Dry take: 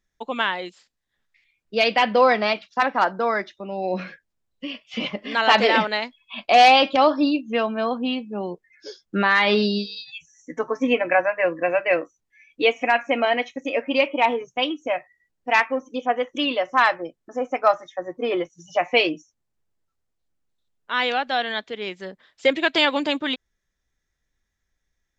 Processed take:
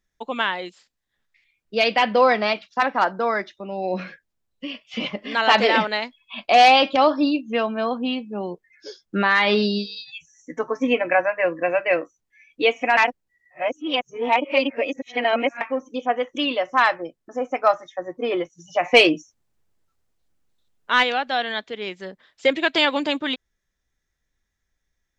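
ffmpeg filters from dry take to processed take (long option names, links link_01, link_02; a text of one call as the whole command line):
ffmpeg -i in.wav -filter_complex "[0:a]asplit=3[link_01][link_02][link_03];[link_01]afade=type=out:start_time=18.83:duration=0.02[link_04];[link_02]acontrast=64,afade=type=in:start_time=18.83:duration=0.02,afade=type=out:start_time=21.02:duration=0.02[link_05];[link_03]afade=type=in:start_time=21.02:duration=0.02[link_06];[link_04][link_05][link_06]amix=inputs=3:normalize=0,asplit=3[link_07][link_08][link_09];[link_07]atrim=end=12.972[link_10];[link_08]atrim=start=12.968:end=15.612,asetpts=PTS-STARTPTS,areverse[link_11];[link_09]atrim=start=15.608[link_12];[link_10][link_11]acrossfade=duration=0.004:curve1=hsin:curve2=hsin[link_13];[link_13][link_12]acrossfade=duration=0.004:curve1=hsin:curve2=hsin" out.wav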